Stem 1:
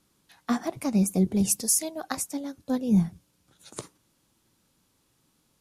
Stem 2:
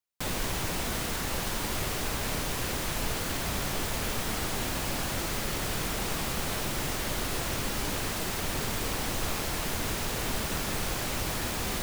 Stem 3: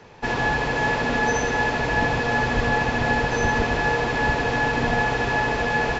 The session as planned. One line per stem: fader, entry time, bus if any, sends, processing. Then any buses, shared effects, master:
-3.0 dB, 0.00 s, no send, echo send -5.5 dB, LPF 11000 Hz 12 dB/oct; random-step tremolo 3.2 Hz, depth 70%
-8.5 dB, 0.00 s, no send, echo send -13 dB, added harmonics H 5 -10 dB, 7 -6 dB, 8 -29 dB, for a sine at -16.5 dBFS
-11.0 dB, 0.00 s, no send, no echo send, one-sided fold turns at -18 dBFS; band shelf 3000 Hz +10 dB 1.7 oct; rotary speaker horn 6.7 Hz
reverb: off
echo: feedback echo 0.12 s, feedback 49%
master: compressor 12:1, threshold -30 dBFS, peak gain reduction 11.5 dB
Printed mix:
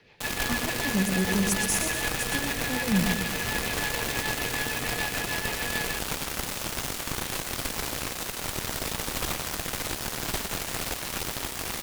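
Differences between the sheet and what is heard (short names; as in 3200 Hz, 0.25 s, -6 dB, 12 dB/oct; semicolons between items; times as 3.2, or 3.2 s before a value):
stem 2 -8.5 dB -> -1.0 dB; master: missing compressor 12:1, threshold -30 dBFS, peak gain reduction 11.5 dB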